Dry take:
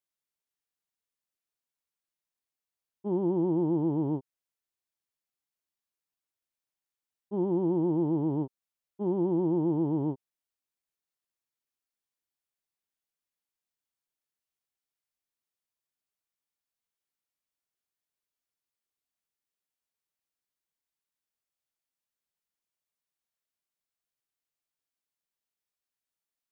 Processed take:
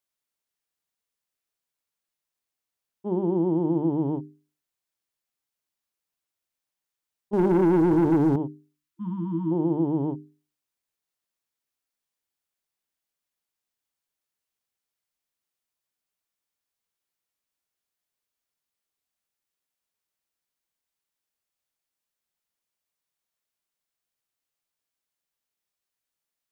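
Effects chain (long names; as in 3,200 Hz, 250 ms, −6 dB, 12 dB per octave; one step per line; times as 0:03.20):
mains-hum notches 50/100/150/200/250/300/350/400 Hz
0:07.33–0:08.36: leveller curve on the samples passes 2
0:08.76–0:09.51: time-frequency box erased 340–920 Hz
level +4 dB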